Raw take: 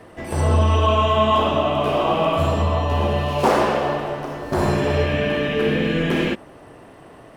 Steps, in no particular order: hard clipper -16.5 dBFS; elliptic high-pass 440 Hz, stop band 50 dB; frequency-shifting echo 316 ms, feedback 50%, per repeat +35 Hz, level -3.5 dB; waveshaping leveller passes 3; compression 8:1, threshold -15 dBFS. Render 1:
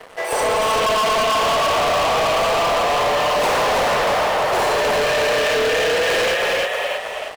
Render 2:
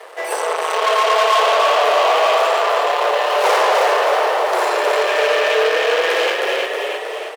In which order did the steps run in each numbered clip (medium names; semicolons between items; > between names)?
elliptic high-pass > frequency-shifting echo > compression > waveshaping leveller > hard clipper; hard clipper > compression > frequency-shifting echo > waveshaping leveller > elliptic high-pass